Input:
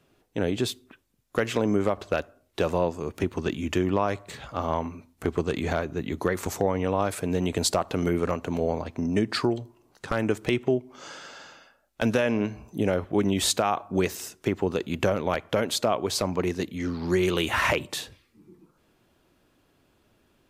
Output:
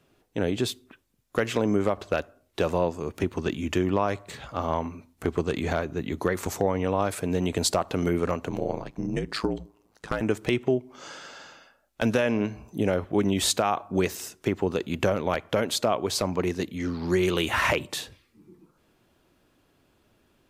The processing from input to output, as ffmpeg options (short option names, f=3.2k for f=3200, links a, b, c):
-filter_complex "[0:a]asettb=1/sr,asplit=3[a][b][c];[a]atrim=end=8.494[d];[b]atrim=start=8.49:end=10.21,asetpts=PTS-STARTPTS,afade=t=in:d=0.004:c=qsin,afade=t=out:st=1.716:d=0.004:c=qsin,aeval=exprs='val(0)*sin(2*PI*54*n/s)':c=same[e];[c]atrim=start=10.206[f];[d][e]acrossfade=d=0.004:c1=hsin:c2=qsin[g];[g][f]acrossfade=d=0.004:c1=qsin:c2=hsin"